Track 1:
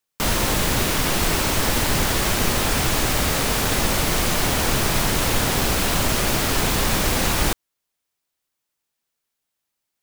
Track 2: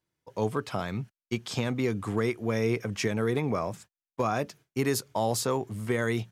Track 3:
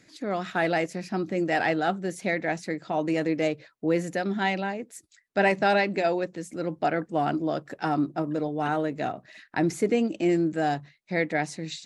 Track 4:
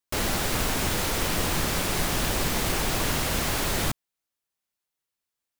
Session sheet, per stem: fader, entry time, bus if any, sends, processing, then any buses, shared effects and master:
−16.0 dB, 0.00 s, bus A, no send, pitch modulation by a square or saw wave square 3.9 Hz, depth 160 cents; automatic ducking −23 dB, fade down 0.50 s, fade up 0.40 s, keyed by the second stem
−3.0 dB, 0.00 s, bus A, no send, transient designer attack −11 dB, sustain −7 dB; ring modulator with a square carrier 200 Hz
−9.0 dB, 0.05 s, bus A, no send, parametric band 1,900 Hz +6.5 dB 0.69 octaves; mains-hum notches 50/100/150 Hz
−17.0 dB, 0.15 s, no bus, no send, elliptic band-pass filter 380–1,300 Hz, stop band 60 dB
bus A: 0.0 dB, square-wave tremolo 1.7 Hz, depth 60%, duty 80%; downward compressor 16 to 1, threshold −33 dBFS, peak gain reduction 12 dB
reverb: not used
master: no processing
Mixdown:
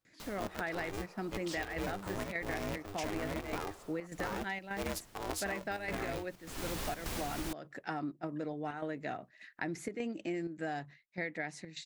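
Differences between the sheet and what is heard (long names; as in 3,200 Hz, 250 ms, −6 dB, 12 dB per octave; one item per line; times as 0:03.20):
stem 1: missing pitch modulation by a square or saw wave square 3.9 Hz, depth 160 cents
stem 3: missing mains-hum notches 50/100/150 Hz
stem 4 −17.0 dB → −24.0 dB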